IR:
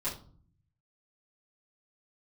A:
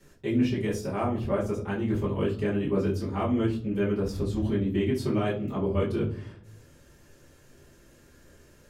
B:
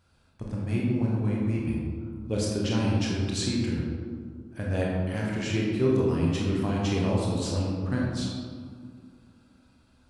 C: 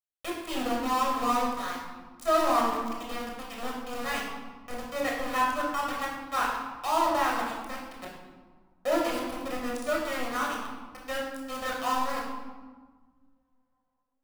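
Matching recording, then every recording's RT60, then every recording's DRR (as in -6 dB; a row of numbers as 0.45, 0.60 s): A; 0.45, 2.1, 1.5 s; -10.5, -4.0, -3.0 dB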